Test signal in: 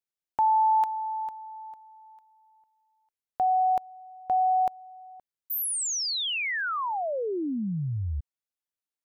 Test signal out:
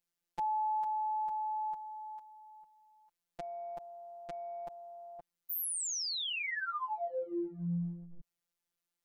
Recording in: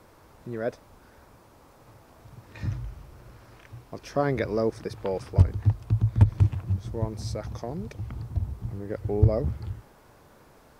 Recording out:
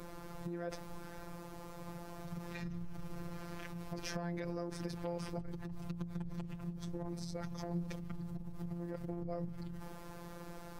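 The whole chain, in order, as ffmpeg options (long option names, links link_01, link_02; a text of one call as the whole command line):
ffmpeg -i in.wav -af "lowshelf=frequency=200:gain=8.5,acompressor=threshold=-40dB:ratio=6:attack=1.7:release=27:knee=1:detection=rms,afftfilt=real='hypot(re,im)*cos(PI*b)':imag='0':win_size=1024:overlap=0.75,volume=7dB" out.wav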